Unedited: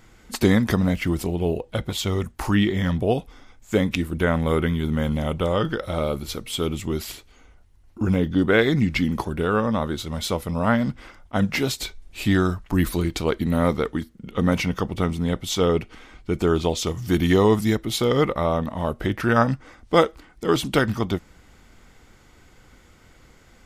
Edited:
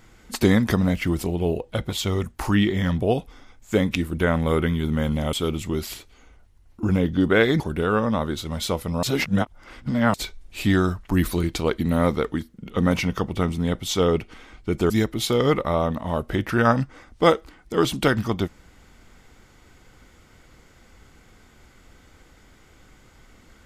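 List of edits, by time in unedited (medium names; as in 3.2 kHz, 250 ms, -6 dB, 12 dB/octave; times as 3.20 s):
5.33–6.51 s: delete
8.78–9.21 s: delete
10.64–11.75 s: reverse
16.51–17.61 s: delete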